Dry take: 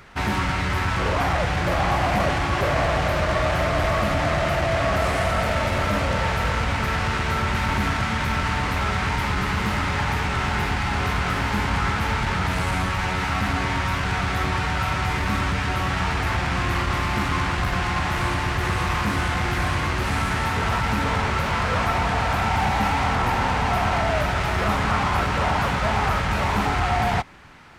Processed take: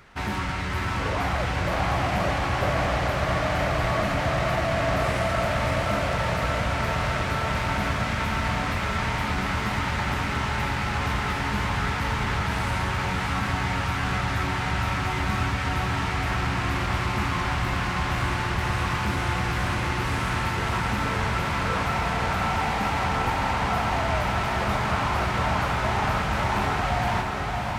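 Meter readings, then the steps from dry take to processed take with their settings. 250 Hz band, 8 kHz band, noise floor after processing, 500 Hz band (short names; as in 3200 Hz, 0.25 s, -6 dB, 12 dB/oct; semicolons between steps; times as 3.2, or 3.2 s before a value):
-2.5 dB, -2.5 dB, -28 dBFS, -2.5 dB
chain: on a send: diffused feedback echo 0.607 s, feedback 75%, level -5 dB; on the sum: gain -5 dB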